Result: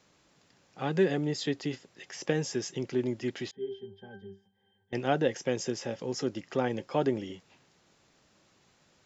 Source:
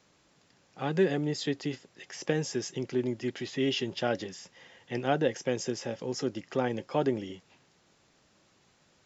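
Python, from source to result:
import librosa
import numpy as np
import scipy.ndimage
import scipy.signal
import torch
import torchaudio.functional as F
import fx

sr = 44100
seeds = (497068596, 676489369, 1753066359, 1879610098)

y = fx.octave_resonator(x, sr, note='G', decay_s=0.22, at=(3.51, 4.93))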